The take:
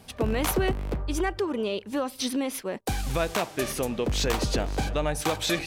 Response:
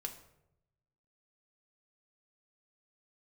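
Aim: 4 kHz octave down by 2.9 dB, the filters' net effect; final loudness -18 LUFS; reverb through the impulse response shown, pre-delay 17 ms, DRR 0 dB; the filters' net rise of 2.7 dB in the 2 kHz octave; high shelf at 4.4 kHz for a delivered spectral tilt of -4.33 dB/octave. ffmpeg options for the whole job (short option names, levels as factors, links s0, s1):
-filter_complex "[0:a]equalizer=f=2000:t=o:g=4.5,equalizer=f=4000:t=o:g=-7.5,highshelf=f=4400:g=4.5,asplit=2[s0][s1];[1:a]atrim=start_sample=2205,adelay=17[s2];[s1][s2]afir=irnorm=-1:irlink=0,volume=1.19[s3];[s0][s3]amix=inputs=2:normalize=0,volume=2.24"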